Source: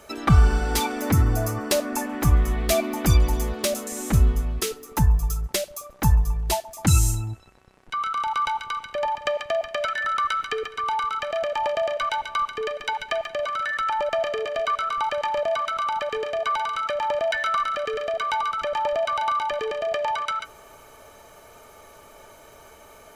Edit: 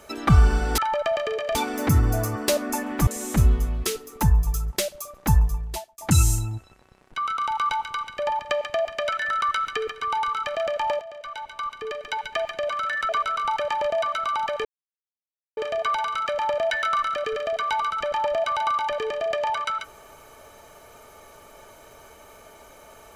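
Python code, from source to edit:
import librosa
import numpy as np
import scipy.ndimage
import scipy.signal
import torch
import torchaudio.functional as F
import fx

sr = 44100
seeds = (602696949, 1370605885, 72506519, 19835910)

y = fx.edit(x, sr, fx.cut(start_s=2.3, length_s=1.53),
    fx.fade_out_span(start_s=6.16, length_s=0.58),
    fx.fade_in_from(start_s=11.77, length_s=1.49, floor_db=-17.5),
    fx.move(start_s=13.85, length_s=0.77, to_s=0.78),
    fx.insert_silence(at_s=16.18, length_s=0.92), tone=tone)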